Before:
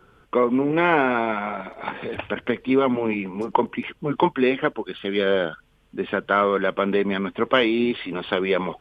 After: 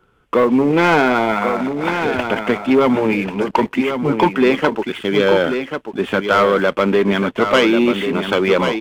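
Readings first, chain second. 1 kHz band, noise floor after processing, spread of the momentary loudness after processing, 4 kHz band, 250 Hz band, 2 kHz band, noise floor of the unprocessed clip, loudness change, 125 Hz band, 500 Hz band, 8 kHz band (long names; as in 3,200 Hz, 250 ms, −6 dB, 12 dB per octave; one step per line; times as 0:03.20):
+5.5 dB, −48 dBFS, 6 LU, +6.5 dB, +7.0 dB, +6.5 dB, −59 dBFS, +6.5 dB, +7.5 dB, +6.5 dB, can't be measured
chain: leveller curve on the samples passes 2
single-tap delay 1,090 ms −7.5 dB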